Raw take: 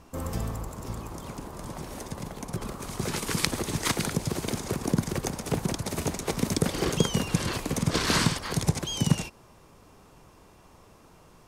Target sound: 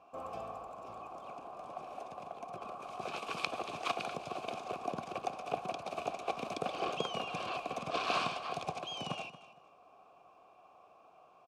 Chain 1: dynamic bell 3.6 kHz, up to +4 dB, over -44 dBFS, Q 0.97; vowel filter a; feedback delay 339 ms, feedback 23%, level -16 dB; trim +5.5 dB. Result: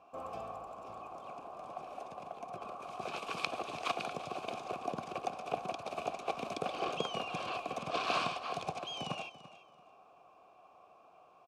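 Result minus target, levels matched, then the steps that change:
echo 108 ms late
change: feedback delay 231 ms, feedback 23%, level -16 dB

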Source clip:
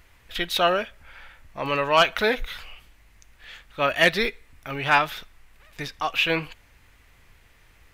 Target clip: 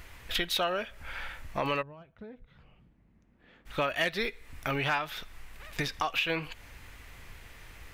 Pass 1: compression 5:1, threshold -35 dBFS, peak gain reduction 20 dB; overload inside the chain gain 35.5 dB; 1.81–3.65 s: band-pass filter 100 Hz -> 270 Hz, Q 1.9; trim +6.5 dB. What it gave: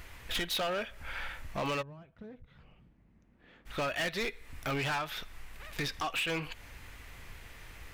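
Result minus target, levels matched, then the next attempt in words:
overload inside the chain: distortion +24 dB
compression 5:1, threshold -35 dBFS, peak gain reduction 20 dB; overload inside the chain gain 24 dB; 1.81–3.65 s: band-pass filter 100 Hz -> 270 Hz, Q 1.9; trim +6.5 dB

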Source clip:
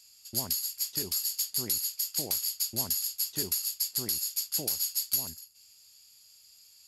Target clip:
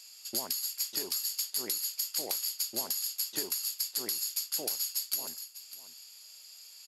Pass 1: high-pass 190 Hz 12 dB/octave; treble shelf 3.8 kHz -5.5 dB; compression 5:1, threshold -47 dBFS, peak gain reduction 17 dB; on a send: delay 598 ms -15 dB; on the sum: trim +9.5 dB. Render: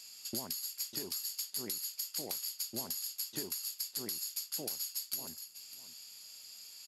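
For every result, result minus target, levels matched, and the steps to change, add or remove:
250 Hz band +6.0 dB; compression: peak gain reduction +5.5 dB
change: high-pass 400 Hz 12 dB/octave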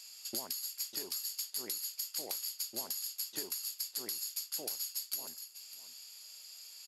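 compression: peak gain reduction +5.5 dB
change: compression 5:1, threshold -40 dBFS, peak gain reduction 11.5 dB

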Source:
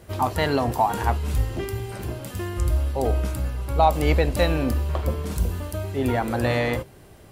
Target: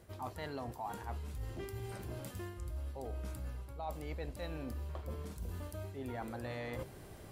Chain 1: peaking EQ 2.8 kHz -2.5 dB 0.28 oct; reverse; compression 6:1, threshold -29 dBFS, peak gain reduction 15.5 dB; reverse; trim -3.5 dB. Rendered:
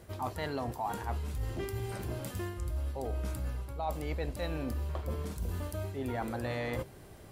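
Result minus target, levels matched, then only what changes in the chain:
compression: peak gain reduction -6.5 dB
change: compression 6:1, threshold -37 dBFS, peak gain reduction 22.5 dB

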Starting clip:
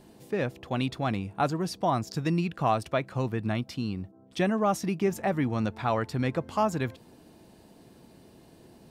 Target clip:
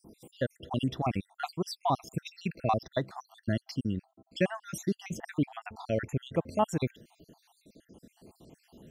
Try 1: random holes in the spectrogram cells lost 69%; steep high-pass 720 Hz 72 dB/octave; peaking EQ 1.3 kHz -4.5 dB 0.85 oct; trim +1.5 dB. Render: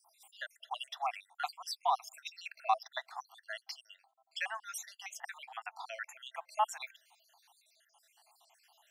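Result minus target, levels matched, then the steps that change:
1 kHz band +5.5 dB
remove: steep high-pass 720 Hz 72 dB/octave

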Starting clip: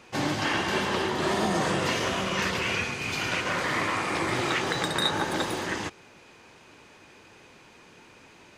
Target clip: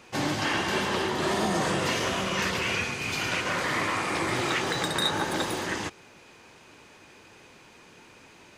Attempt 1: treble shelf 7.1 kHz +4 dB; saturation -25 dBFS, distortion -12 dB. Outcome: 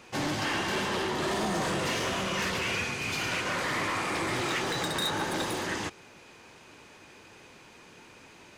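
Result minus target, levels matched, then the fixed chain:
saturation: distortion +13 dB
treble shelf 7.1 kHz +4 dB; saturation -14.5 dBFS, distortion -26 dB

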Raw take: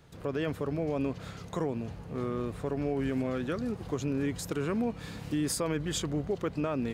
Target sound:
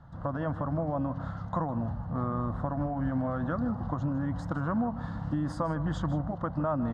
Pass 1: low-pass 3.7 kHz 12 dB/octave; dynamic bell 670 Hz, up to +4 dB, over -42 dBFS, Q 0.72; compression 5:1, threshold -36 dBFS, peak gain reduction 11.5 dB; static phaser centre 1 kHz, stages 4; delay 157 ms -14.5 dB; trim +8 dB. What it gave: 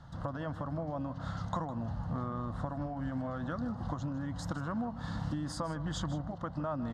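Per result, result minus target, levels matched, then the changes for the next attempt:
4 kHz band +11.5 dB; compression: peak gain reduction +6.5 dB
change: low-pass 1.7 kHz 12 dB/octave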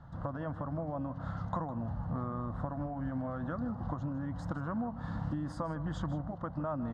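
compression: peak gain reduction +6.5 dB
change: compression 5:1, threshold -28 dBFS, peak gain reduction 5 dB

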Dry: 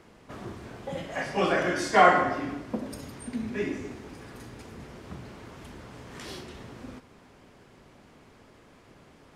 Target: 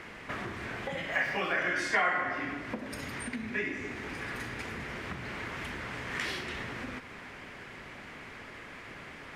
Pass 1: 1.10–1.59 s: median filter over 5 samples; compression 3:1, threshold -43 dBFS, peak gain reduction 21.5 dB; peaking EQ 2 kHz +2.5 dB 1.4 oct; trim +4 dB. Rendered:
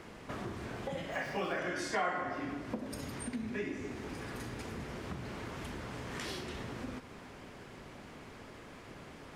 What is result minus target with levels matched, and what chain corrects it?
2 kHz band -4.0 dB
1.10–1.59 s: median filter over 5 samples; compression 3:1, threshold -43 dBFS, peak gain reduction 21.5 dB; peaking EQ 2 kHz +14 dB 1.4 oct; trim +4 dB

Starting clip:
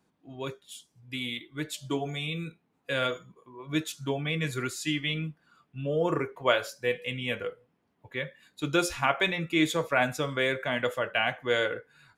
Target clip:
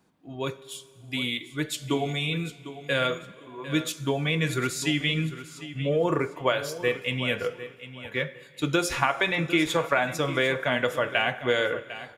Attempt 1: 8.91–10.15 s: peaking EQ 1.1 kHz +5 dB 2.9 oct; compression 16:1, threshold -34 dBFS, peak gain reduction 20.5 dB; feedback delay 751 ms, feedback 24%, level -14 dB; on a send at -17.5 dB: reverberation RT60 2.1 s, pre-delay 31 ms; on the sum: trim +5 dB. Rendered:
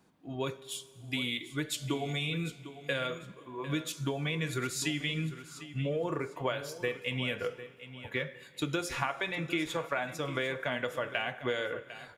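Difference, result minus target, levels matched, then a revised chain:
compression: peak gain reduction +9.5 dB
8.91–10.15 s: peaking EQ 1.1 kHz +5 dB 2.9 oct; compression 16:1, threshold -24 dBFS, peak gain reduction 11 dB; feedback delay 751 ms, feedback 24%, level -14 dB; on a send at -17.5 dB: reverberation RT60 2.1 s, pre-delay 31 ms; on the sum: trim +5 dB

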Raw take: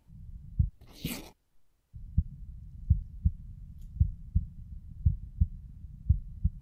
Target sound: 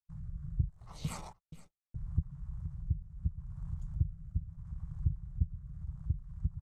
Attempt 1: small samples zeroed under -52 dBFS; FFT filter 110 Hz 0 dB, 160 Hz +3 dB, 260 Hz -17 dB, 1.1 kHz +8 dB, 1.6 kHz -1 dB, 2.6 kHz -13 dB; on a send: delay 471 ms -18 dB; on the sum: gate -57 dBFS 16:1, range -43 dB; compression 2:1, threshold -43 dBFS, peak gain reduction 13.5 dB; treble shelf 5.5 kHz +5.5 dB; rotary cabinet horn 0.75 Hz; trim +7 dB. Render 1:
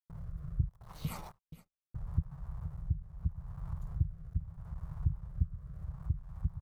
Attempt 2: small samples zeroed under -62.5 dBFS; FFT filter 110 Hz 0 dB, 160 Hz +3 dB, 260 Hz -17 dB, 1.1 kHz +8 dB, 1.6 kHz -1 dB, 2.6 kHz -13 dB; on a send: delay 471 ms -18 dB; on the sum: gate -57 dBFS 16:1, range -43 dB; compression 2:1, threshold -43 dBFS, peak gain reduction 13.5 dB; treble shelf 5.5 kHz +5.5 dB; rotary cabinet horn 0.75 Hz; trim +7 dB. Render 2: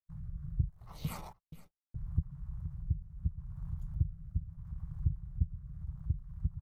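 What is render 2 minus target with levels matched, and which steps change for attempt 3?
8 kHz band -4.5 dB
add after compression: resonant low-pass 7.9 kHz, resonance Q 2.1

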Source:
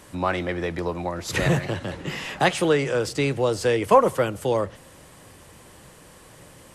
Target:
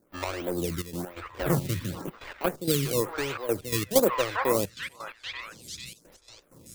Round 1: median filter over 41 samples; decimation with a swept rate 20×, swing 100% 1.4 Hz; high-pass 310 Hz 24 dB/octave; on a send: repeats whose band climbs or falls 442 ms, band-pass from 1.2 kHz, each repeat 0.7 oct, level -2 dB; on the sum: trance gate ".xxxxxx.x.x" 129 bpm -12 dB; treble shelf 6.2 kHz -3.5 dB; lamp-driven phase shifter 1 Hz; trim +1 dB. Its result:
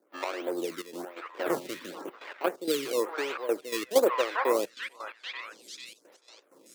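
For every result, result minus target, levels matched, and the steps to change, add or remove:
8 kHz band -4.5 dB; 250 Hz band -2.5 dB
change: treble shelf 6.2 kHz +7 dB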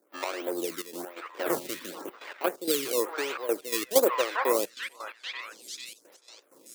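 250 Hz band -3.5 dB
remove: high-pass 310 Hz 24 dB/octave

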